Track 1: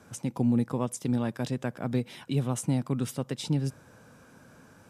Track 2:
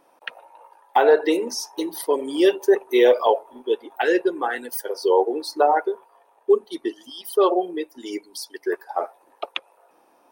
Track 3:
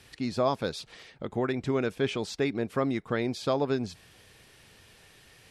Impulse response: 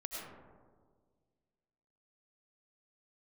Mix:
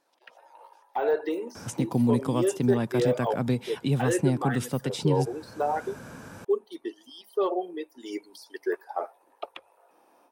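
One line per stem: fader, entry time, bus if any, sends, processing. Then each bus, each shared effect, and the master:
+2.5 dB, 1.55 s, no send, multiband upward and downward compressor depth 40%
−15.0 dB, 0.00 s, no send, de-essing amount 100%; mains-hum notches 60/120 Hz; automatic gain control gain up to 14.5 dB
−17.0 dB, 0.00 s, no send, Chebyshev band-stop filter 140–2,200 Hz, order 5; downward compressor, threshold −43 dBFS, peak gain reduction 11 dB; ring modulator whose carrier an LFO sweeps 1,100 Hz, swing 55%, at 2.3 Hz; automatic ducking −16 dB, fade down 1.90 s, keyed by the second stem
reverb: not used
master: no processing

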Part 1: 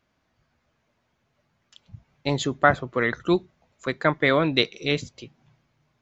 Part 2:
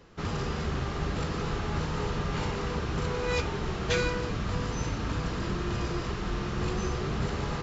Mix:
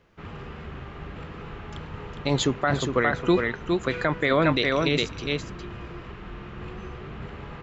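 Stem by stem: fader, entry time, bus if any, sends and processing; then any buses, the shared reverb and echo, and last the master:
+3.0 dB, 0.00 s, no send, echo send −6.5 dB, no processing
−7.5 dB, 0.00 s, no send, no echo send, high shelf with overshoot 3,800 Hz −11.5 dB, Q 1.5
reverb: not used
echo: single-tap delay 408 ms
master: brickwall limiter −11 dBFS, peak gain reduction 11.5 dB

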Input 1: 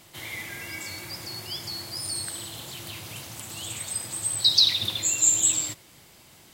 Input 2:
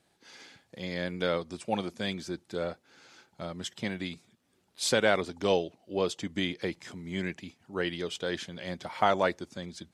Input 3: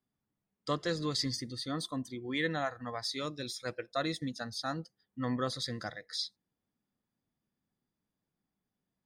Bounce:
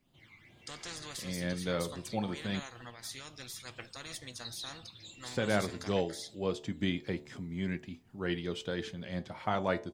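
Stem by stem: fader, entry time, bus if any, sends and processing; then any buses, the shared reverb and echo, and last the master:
−11.0 dB, 0.00 s, no send, echo send −8.5 dB, low-pass filter 3,200 Hz 12 dB per octave; all-pass phaser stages 12, 2.2 Hz, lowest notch 540–1,900 Hz
+2.0 dB, 0.45 s, muted 0:02.60–0:04.69, no send, no echo send, de-essing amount 70%; bass and treble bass +9 dB, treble −4 dB; hum removal 73.29 Hz, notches 14
−3.0 dB, 0.00 s, no send, no echo send, low-shelf EQ 200 Hz +11 dB; every bin compressed towards the loudest bin 4 to 1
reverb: not used
echo: repeating echo 425 ms, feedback 50%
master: flanger 0.27 Hz, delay 7.3 ms, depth 2.3 ms, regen +79%; amplitude modulation by smooth noise, depth 60%

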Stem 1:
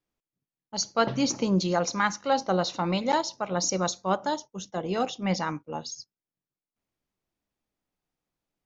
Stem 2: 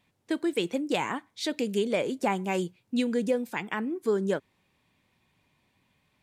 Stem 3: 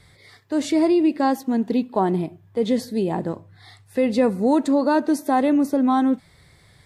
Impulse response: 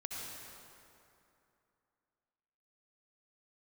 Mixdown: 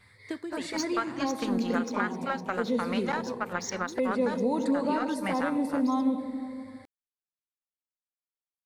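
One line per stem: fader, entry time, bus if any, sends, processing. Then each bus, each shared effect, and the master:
−1.5 dB, 0.00 s, bus A, no send, power curve on the samples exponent 1.4
+0.5 dB, 0.00 s, no bus, no send, downward compressor, threshold −29 dBFS, peak gain reduction 8.5 dB; automatic ducking −11 dB, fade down 0.55 s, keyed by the first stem
−10.5 dB, 0.00 s, bus A, send −3 dB, EQ curve with evenly spaced ripples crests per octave 0.94, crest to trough 8 dB; flanger swept by the level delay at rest 10.8 ms, full sweep at −15 dBFS
bus A: 0.0 dB, parametric band 1,500 Hz +14.5 dB 1.1 octaves; downward compressor 12 to 1, threshold −27 dBFS, peak gain reduction 16 dB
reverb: on, RT60 2.7 s, pre-delay 57 ms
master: no processing

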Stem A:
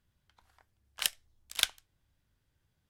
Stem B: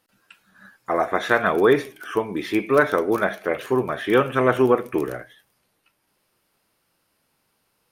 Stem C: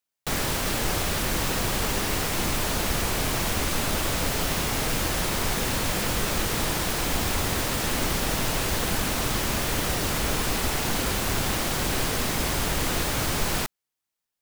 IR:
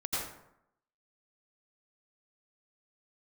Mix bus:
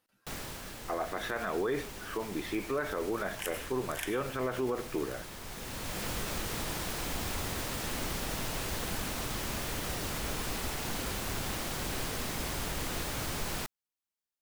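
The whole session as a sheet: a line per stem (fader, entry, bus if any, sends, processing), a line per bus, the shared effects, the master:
+3.0 dB, 2.40 s, send −13.5 dB, phaser with its sweep stopped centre 850 Hz, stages 8; soft clipping −20 dBFS, distortion −10 dB
−9.0 dB, 0.00 s, no send, no processing
−9.5 dB, 0.00 s, no send, automatic ducking −9 dB, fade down 0.75 s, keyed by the second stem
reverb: on, RT60 0.80 s, pre-delay 78 ms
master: brickwall limiter −23.5 dBFS, peak gain reduction 10 dB

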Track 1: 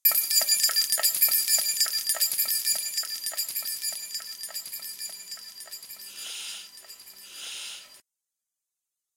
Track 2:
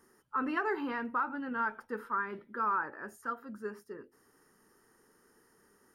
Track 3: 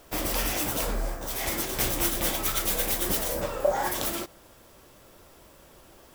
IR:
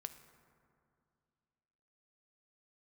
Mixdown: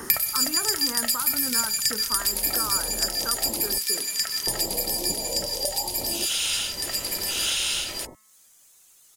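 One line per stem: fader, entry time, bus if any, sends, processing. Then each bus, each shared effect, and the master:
+0.5 dB, 0.05 s, no send, hum removal 216.1 Hz, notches 10
0.0 dB, 0.00 s, no send, no processing
−16.0 dB, 2.00 s, muted 0:03.78–0:04.47, no send, elliptic low-pass filter 930 Hz, stop band 40 dB; automatic gain control gain up to 13 dB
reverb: not used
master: multiband upward and downward compressor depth 100%

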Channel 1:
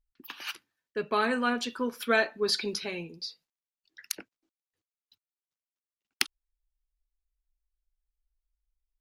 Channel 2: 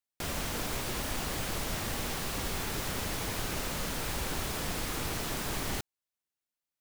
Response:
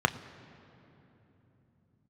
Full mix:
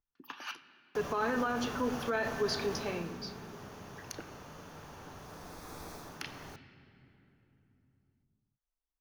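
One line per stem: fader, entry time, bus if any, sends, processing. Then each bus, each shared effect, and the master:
−8.0 dB, 0.00 s, send −6 dB, no processing
0:02.76 −4.5 dB → 0:03.18 −13 dB, 0.75 s, send −13.5 dB, automatic ducking −8 dB, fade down 0.25 s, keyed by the first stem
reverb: on, RT60 3.3 s, pre-delay 3 ms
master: brickwall limiter −23 dBFS, peak gain reduction 10.5 dB

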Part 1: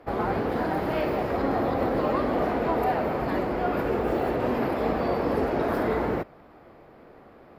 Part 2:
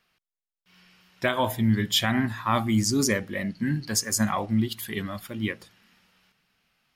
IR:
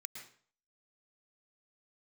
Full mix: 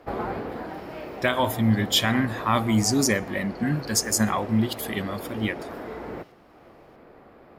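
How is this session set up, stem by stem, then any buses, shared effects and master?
0.0 dB, 0.00 s, send −17.5 dB, automatic ducking −11 dB, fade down 0.85 s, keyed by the second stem
+1.5 dB, 0.00 s, send −19.5 dB, no processing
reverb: on, RT60 0.50 s, pre-delay 104 ms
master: no processing

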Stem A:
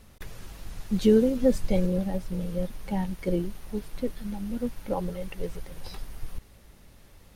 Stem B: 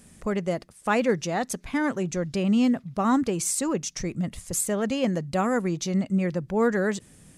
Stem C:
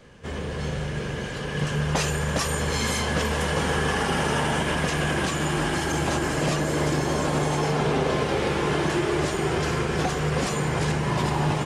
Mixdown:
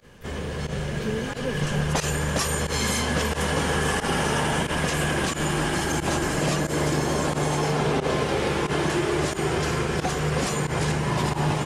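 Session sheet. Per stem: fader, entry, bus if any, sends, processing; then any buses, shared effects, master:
−12.0 dB, 0.00 s, muted 0:02.33–0:03.73, no send, no processing
−15.0 dB, 0.40 s, no send, no processing
0.0 dB, 0.00 s, no send, no processing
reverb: not used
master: high-shelf EQ 8,100 Hz +5.5 dB; fake sidechain pumping 90 BPM, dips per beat 1, −19 dB, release 69 ms

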